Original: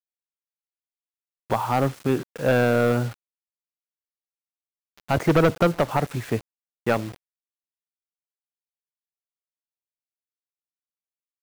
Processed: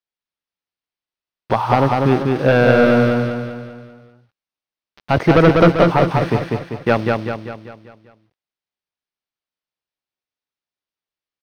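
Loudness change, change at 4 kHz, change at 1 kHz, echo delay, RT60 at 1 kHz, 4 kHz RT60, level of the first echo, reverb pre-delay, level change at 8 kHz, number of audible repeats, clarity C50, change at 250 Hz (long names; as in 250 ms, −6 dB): +7.5 dB, +7.5 dB, +8.0 dB, 196 ms, no reverb audible, no reverb audible, −3.0 dB, no reverb audible, can't be measured, 6, no reverb audible, +9.0 dB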